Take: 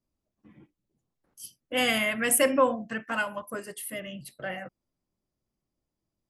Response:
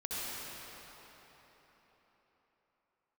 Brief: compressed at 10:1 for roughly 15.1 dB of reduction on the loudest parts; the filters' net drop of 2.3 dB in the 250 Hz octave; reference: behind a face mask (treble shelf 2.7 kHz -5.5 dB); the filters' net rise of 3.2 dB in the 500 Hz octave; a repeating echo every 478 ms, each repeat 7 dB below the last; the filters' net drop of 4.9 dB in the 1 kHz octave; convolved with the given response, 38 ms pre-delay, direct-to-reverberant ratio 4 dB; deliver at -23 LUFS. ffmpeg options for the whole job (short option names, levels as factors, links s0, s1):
-filter_complex "[0:a]equalizer=f=250:t=o:g=-3.5,equalizer=f=500:t=o:g=6,equalizer=f=1000:t=o:g=-7,acompressor=threshold=0.0282:ratio=10,aecho=1:1:478|956|1434|1912|2390:0.447|0.201|0.0905|0.0407|0.0183,asplit=2[s0][s1];[1:a]atrim=start_sample=2205,adelay=38[s2];[s1][s2]afir=irnorm=-1:irlink=0,volume=0.376[s3];[s0][s3]amix=inputs=2:normalize=0,highshelf=f=2700:g=-5.5,volume=4.47"